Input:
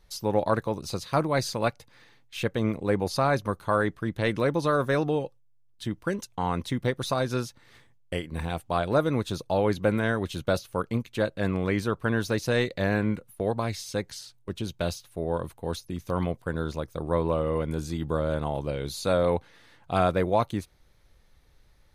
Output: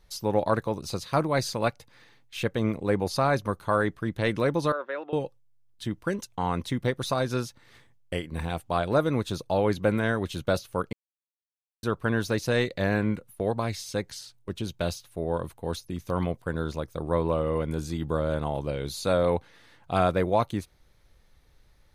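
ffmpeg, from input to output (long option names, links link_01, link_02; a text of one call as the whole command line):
ffmpeg -i in.wav -filter_complex "[0:a]asettb=1/sr,asplit=3[link_01][link_02][link_03];[link_01]atrim=end=4.724[link_04];[link_02]atrim=start=4.72:end=5.13,asetpts=PTS-STARTPTS,afade=type=in:duration=0.004:curve=qsin,afade=type=out:start_time=0.406:duration=0.004:curve=qsin,highpass=frequency=440:width=0.5412,highpass=frequency=440:width=1.3066,equalizer=frequency=440:width_type=q:width=4:gain=-10,equalizer=frequency=720:width_type=q:width=4:gain=-10,equalizer=frequency=1100:width_type=q:width=4:gain=-8,equalizer=frequency=1600:width_type=q:width=4:gain=-5,equalizer=frequency=2300:width_type=q:width=4:gain=-6,lowpass=frequency=2600:width=0.5412,lowpass=frequency=2600:width=1.3066[link_05];[link_03]atrim=start=5.126[link_06];[link_04][link_05]acrossfade=duration=0.004:curve1=hsin:curve2=qsin[link_07];[link_07][link_06]acrossfade=duration=0.004:curve1=qsin:curve2=hsin,asplit=3[link_08][link_09][link_10];[link_08]atrim=end=10.93,asetpts=PTS-STARTPTS,afade=type=out:start_time=10.926:duration=0.004:curve=hsin[link_11];[link_09]atrim=start=10.93:end=11.83,asetpts=PTS-STARTPTS,volume=0[link_12];[link_10]atrim=start=11.83,asetpts=PTS-STARTPTS,afade=type=in:duration=0.004:curve=hsin[link_13];[link_11][link_12][link_13]concat=n=3:v=0:a=1" out.wav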